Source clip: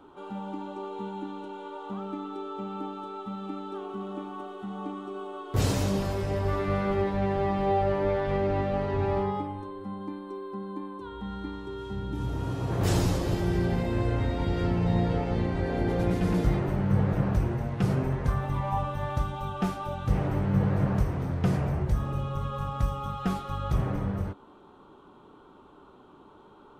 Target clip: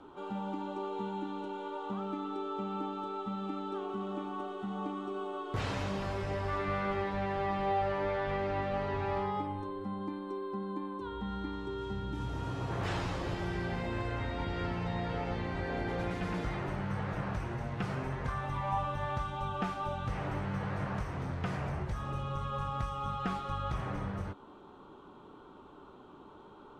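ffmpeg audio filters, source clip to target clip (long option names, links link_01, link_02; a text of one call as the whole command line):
ffmpeg -i in.wav -filter_complex "[0:a]acrossover=split=800[link_01][link_02];[link_01]acompressor=threshold=-34dB:ratio=6[link_03];[link_02]lowpass=8500[link_04];[link_03][link_04]amix=inputs=2:normalize=0,acrossover=split=3300[link_05][link_06];[link_06]acompressor=threshold=-57dB:ratio=4:attack=1:release=60[link_07];[link_05][link_07]amix=inputs=2:normalize=0" out.wav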